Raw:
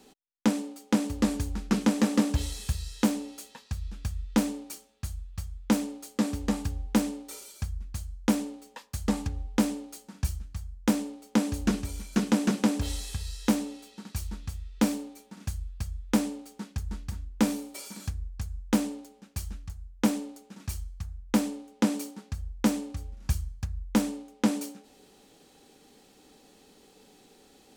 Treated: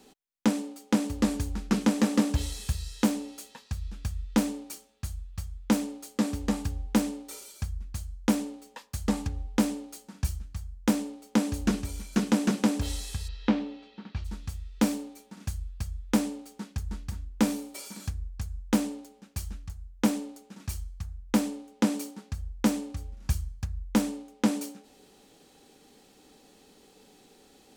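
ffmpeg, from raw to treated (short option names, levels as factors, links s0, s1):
-filter_complex "[0:a]asplit=3[s0][s1][s2];[s0]afade=t=out:st=13.27:d=0.02[s3];[s1]lowpass=f=3800:w=0.5412,lowpass=f=3800:w=1.3066,afade=t=in:st=13.27:d=0.02,afade=t=out:st=14.24:d=0.02[s4];[s2]afade=t=in:st=14.24:d=0.02[s5];[s3][s4][s5]amix=inputs=3:normalize=0"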